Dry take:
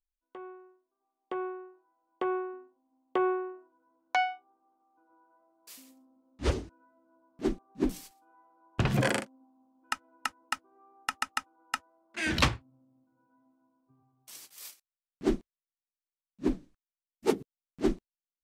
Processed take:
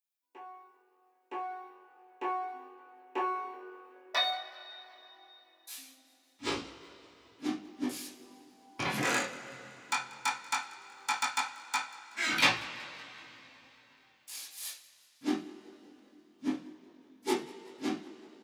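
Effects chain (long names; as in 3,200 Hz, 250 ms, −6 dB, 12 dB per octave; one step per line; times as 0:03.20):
gain on one half-wave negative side −3 dB
high-pass filter 100 Hz 12 dB per octave
RIAA equalisation recording
formants moved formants −3 semitones
chorus effect 0.16 Hz, delay 17.5 ms, depth 6.1 ms
echo with shifted repeats 188 ms, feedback 54%, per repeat +45 Hz, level −22 dB
convolution reverb, pre-delay 3 ms, DRR −9 dB
level −5.5 dB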